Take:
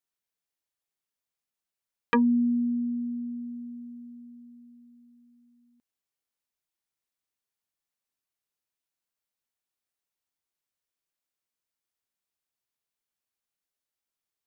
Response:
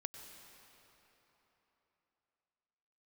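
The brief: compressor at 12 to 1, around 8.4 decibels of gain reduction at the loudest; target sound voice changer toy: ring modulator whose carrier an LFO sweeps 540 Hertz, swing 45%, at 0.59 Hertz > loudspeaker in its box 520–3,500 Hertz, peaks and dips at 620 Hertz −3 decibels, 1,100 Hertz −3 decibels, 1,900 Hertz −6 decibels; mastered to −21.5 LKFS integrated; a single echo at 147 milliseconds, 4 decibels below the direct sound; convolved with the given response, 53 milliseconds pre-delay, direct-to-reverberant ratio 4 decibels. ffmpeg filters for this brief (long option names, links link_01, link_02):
-filter_complex "[0:a]acompressor=threshold=-28dB:ratio=12,aecho=1:1:147:0.631,asplit=2[link_01][link_02];[1:a]atrim=start_sample=2205,adelay=53[link_03];[link_02][link_03]afir=irnorm=-1:irlink=0,volume=-1.5dB[link_04];[link_01][link_04]amix=inputs=2:normalize=0,aeval=exprs='val(0)*sin(2*PI*540*n/s+540*0.45/0.59*sin(2*PI*0.59*n/s))':channel_layout=same,highpass=520,equalizer=frequency=620:width_type=q:width=4:gain=-3,equalizer=frequency=1100:width_type=q:width=4:gain=-3,equalizer=frequency=1900:width_type=q:width=4:gain=-6,lowpass=frequency=3500:width=0.5412,lowpass=frequency=3500:width=1.3066,volume=17.5dB"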